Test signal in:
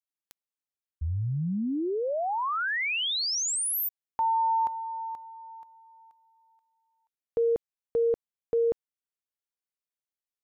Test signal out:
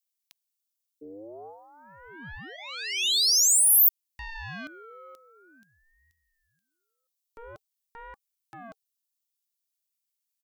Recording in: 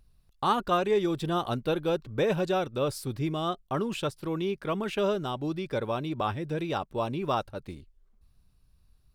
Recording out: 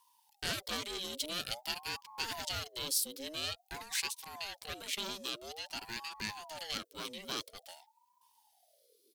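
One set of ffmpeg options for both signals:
-af "aeval=exprs='0.224*(cos(1*acos(clip(val(0)/0.224,-1,1)))-cos(1*PI/2))+0.0501*(cos(2*acos(clip(val(0)/0.224,-1,1)))-cos(2*PI/2))+0.0126*(cos(6*acos(clip(val(0)/0.224,-1,1)))-cos(6*PI/2))':c=same,firequalizer=gain_entry='entry(170,0);entry(270,-28);entry(490,-13);entry(760,-5);entry(1400,-19);entry(3300,-9);entry(9200,-15)':delay=0.05:min_phase=1,asoftclip=type=tanh:threshold=-27dB,crystalizer=i=5:c=0,tiltshelf=f=1.4k:g=-10,aeval=exprs='val(0)*sin(2*PI*680*n/s+680*0.45/0.49*sin(2*PI*0.49*n/s))':c=same,volume=1dB"

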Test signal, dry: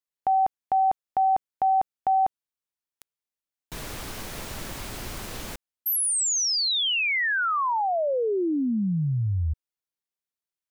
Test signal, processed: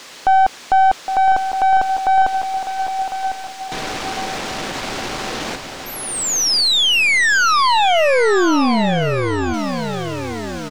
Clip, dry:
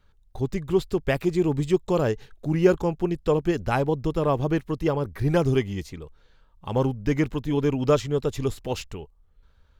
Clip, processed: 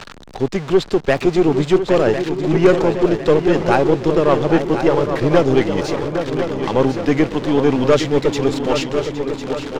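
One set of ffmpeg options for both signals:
-filter_complex "[0:a]aeval=exprs='val(0)+0.5*0.0224*sgn(val(0))':c=same,acrossover=split=180 7000:gain=0.2 1 0.0794[a][b][c];[a][b][c]amix=inputs=3:normalize=0,asplit=2[d][e];[e]adelay=813,lowpass=f=3.5k:p=1,volume=-9dB,asplit=2[f][g];[g]adelay=813,lowpass=f=3.5k:p=1,volume=0.51,asplit=2[h][i];[i]adelay=813,lowpass=f=3.5k:p=1,volume=0.51,asplit=2[j][k];[k]adelay=813,lowpass=f=3.5k:p=1,volume=0.51,asplit=2[l][m];[m]adelay=813,lowpass=f=3.5k:p=1,volume=0.51,asplit=2[n][o];[o]adelay=813,lowpass=f=3.5k:p=1,volume=0.51[p];[f][h][j][l][n][p]amix=inputs=6:normalize=0[q];[d][q]amix=inputs=2:normalize=0,aeval=exprs='0.501*(cos(1*acos(clip(val(0)/0.501,-1,1)))-cos(1*PI/2))+0.0562*(cos(5*acos(clip(val(0)/0.501,-1,1)))-cos(5*PI/2))+0.0398*(cos(8*acos(clip(val(0)/0.501,-1,1)))-cos(8*PI/2))':c=same,asplit=2[r][s];[s]aecho=0:1:1052|2104|3156|4208:0.335|0.134|0.0536|0.0214[t];[r][t]amix=inputs=2:normalize=0,volume=5dB"

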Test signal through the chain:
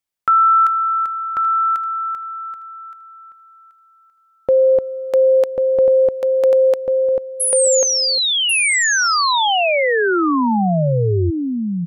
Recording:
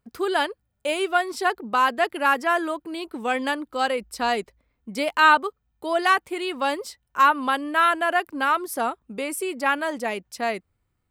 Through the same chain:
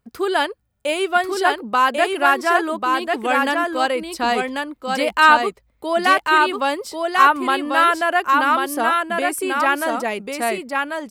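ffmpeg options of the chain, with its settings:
-af "aecho=1:1:1092:0.668,volume=3.5dB"

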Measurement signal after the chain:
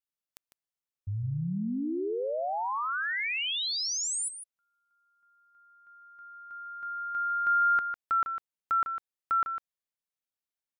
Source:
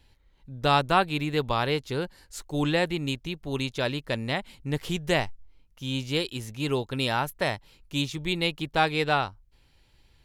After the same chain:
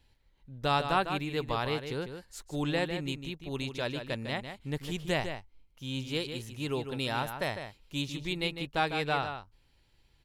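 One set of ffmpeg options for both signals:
-filter_complex "[0:a]asplit=2[a][b];[b]adelay=151.6,volume=-8dB,highshelf=f=4k:g=-3.41[c];[a][c]amix=inputs=2:normalize=0,volume=-6dB"

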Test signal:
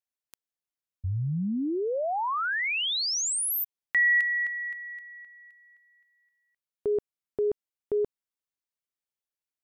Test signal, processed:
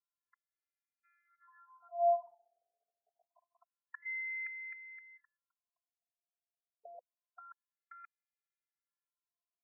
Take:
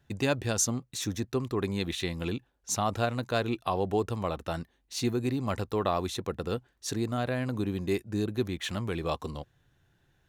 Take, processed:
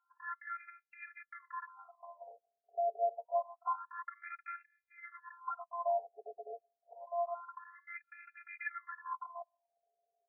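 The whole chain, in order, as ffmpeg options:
-af "volume=26dB,asoftclip=hard,volume=-26dB,afftfilt=real='hypot(re,im)*cos(PI*b)':imag='0':win_size=512:overlap=0.75,afftfilt=real='re*between(b*sr/1024,550*pow(1900/550,0.5+0.5*sin(2*PI*0.27*pts/sr))/1.41,550*pow(1900/550,0.5+0.5*sin(2*PI*0.27*pts/sr))*1.41)':imag='im*between(b*sr/1024,550*pow(1900/550,0.5+0.5*sin(2*PI*0.27*pts/sr))/1.41,550*pow(1900/550,0.5+0.5*sin(2*PI*0.27*pts/sr))*1.41)':win_size=1024:overlap=0.75,volume=3.5dB"

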